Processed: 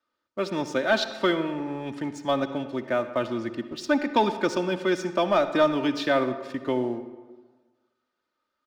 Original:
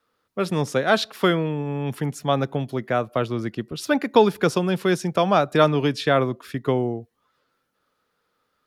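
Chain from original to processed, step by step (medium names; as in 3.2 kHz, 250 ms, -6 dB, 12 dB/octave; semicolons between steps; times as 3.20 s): low-pass 7.4 kHz 24 dB/octave; bass shelf 81 Hz -11 dB; comb 3.3 ms, depth 63%; waveshaping leveller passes 1; reverberation RT60 1.4 s, pre-delay 53 ms, DRR 10.5 dB; trim -8 dB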